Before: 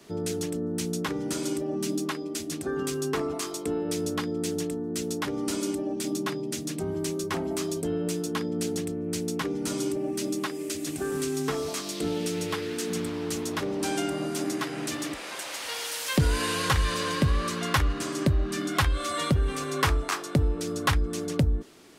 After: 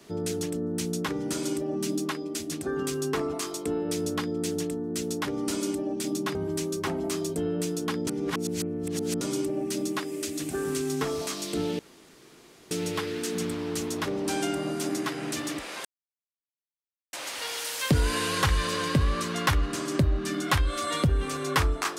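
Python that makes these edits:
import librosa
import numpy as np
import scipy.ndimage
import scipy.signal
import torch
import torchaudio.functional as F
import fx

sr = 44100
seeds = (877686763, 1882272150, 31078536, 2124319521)

y = fx.edit(x, sr, fx.cut(start_s=6.35, length_s=0.47),
    fx.reverse_span(start_s=8.54, length_s=1.14),
    fx.insert_room_tone(at_s=12.26, length_s=0.92),
    fx.insert_silence(at_s=15.4, length_s=1.28), tone=tone)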